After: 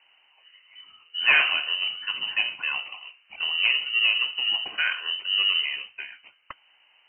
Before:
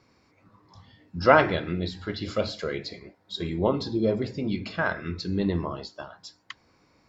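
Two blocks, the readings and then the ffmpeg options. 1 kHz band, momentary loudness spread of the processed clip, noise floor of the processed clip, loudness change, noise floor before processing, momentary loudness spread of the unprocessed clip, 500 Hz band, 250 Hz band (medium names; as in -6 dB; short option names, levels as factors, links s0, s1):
-9.0 dB, 18 LU, -62 dBFS, +4.0 dB, -64 dBFS, 23 LU, -22.5 dB, under -25 dB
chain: -filter_complex "[0:a]bandreject=f=60:t=h:w=6,bandreject=f=120:t=h:w=6,bandreject=f=180:t=h:w=6,bandreject=f=240:t=h:w=6,bandreject=f=300:t=h:w=6,bandreject=f=360:t=h:w=6,bandreject=f=420:t=h:w=6,bandreject=f=480:t=h:w=6,bandreject=f=540:t=h:w=6,asplit=2[s0][s1];[s1]acrusher=samples=29:mix=1:aa=0.000001,volume=0.355[s2];[s0][s2]amix=inputs=2:normalize=0,asoftclip=type=tanh:threshold=0.211,lowpass=f=2600:t=q:w=0.5098,lowpass=f=2600:t=q:w=0.6013,lowpass=f=2600:t=q:w=0.9,lowpass=f=2600:t=q:w=2.563,afreqshift=-3100,volume=1.19"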